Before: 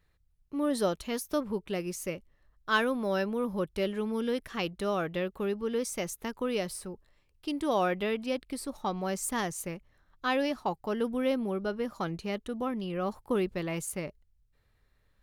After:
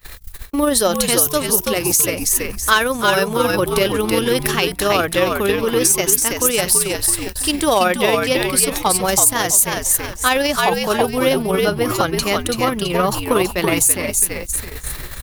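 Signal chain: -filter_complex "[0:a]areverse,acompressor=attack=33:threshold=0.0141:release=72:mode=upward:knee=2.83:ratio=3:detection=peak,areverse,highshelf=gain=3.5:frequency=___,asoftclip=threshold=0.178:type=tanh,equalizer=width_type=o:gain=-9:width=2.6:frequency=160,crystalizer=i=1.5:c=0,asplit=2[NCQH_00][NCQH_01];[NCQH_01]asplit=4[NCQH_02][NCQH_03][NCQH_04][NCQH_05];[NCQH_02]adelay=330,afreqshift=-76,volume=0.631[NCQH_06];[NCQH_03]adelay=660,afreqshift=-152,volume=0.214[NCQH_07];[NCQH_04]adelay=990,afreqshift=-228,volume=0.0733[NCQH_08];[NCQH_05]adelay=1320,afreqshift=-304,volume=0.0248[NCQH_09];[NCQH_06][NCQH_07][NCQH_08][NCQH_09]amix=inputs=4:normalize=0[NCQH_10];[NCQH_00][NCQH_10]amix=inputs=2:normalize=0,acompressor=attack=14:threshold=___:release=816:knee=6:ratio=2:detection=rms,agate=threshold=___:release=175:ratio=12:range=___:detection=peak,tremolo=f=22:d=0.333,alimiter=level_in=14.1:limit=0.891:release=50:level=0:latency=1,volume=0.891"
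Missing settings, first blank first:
6800, 0.0178, 0.00447, 0.0251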